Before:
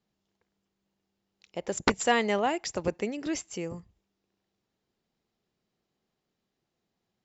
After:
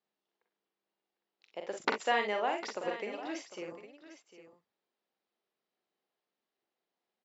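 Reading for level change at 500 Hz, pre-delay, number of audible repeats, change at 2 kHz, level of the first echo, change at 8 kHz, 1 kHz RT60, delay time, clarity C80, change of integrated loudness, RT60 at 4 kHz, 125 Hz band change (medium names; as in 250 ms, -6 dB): -5.5 dB, no reverb, 3, -3.5 dB, -6.0 dB, no reading, no reverb, 43 ms, no reverb, -5.5 dB, no reverb, -18.0 dB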